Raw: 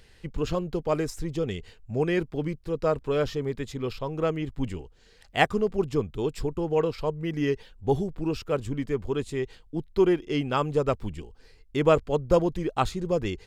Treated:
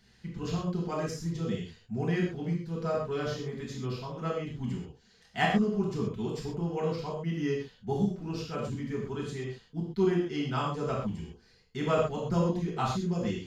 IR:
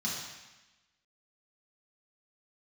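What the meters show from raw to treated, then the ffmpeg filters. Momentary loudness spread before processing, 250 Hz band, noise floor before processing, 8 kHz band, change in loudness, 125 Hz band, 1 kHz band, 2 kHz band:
10 LU, −2.0 dB, −56 dBFS, −2.5 dB, −4.5 dB, −1.0 dB, −4.0 dB, −4.0 dB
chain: -filter_complex "[1:a]atrim=start_sample=2205,atrim=end_sample=6174[link_01];[0:a][link_01]afir=irnorm=-1:irlink=0,volume=-9dB"

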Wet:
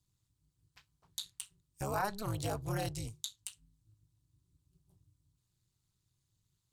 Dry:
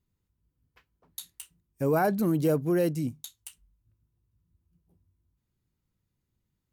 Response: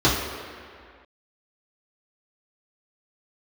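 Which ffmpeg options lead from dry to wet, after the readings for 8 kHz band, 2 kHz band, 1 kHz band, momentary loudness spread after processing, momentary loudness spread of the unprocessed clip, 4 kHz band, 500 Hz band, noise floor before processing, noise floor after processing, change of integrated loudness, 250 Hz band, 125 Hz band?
+0.5 dB, −6.5 dB, −5.5 dB, 12 LU, 19 LU, +3.5 dB, −14.0 dB, −81 dBFS, −82 dBFS, −12.5 dB, −16.5 dB, −7.5 dB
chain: -filter_complex "[0:a]acrossover=split=400|4000[link_01][link_02][link_03];[link_01]acompressor=threshold=-40dB:ratio=4[link_04];[link_02]acompressor=threshold=-27dB:ratio=4[link_05];[link_03]acompressor=threshold=-52dB:ratio=4[link_06];[link_04][link_05][link_06]amix=inputs=3:normalize=0,tremolo=f=210:d=1,equalizer=frequency=125:width_type=o:width=1:gain=9,equalizer=frequency=250:width_type=o:width=1:gain=-9,equalizer=frequency=500:width_type=o:width=1:gain=-7,equalizer=frequency=1000:width_type=o:width=1:gain=4,equalizer=frequency=2000:width_type=o:width=1:gain=-3,equalizer=frequency=4000:width_type=o:width=1:gain=9,equalizer=frequency=8000:width_type=o:width=1:gain=12,volume=1dB"

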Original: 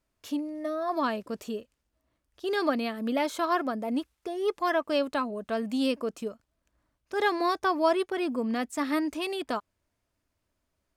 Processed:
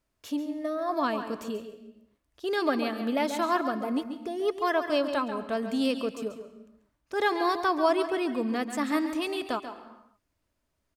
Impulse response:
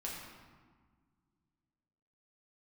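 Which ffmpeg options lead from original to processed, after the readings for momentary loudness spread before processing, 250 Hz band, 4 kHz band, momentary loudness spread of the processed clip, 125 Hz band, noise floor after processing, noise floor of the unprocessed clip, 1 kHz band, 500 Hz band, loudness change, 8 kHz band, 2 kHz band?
9 LU, +0.5 dB, +0.5 dB, 11 LU, can't be measured, −79 dBFS, −80 dBFS, +0.5 dB, +0.5 dB, +0.5 dB, +0.5 dB, +0.5 dB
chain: -filter_complex "[0:a]asplit=2[link_01][link_02];[link_02]adelay=139.9,volume=-10dB,highshelf=frequency=4000:gain=-3.15[link_03];[link_01][link_03]amix=inputs=2:normalize=0,asplit=2[link_04][link_05];[1:a]atrim=start_sample=2205,afade=type=out:start_time=0.37:duration=0.01,atrim=end_sample=16758,adelay=133[link_06];[link_05][link_06]afir=irnorm=-1:irlink=0,volume=-12.5dB[link_07];[link_04][link_07]amix=inputs=2:normalize=0"

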